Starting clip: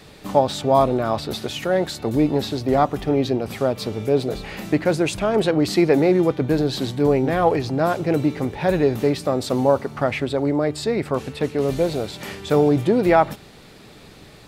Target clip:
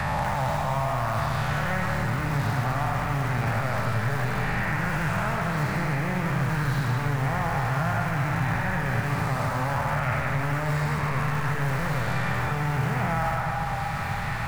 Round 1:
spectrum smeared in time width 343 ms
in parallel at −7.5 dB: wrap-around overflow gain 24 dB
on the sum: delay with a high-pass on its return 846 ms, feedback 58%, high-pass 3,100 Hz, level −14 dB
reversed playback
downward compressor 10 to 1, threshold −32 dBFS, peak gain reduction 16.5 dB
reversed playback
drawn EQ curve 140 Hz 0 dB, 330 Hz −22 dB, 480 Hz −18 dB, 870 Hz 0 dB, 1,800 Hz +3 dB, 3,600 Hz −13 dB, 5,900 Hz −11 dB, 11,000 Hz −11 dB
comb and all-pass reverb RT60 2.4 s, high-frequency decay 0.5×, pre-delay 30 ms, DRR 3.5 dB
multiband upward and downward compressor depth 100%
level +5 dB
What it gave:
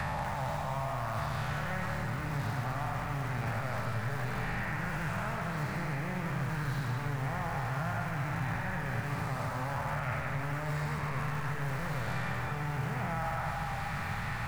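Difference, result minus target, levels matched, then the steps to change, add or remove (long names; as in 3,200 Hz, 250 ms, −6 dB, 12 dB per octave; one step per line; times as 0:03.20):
downward compressor: peak gain reduction +9 dB
change: downward compressor 10 to 1, threshold −22 dBFS, peak gain reduction 7.5 dB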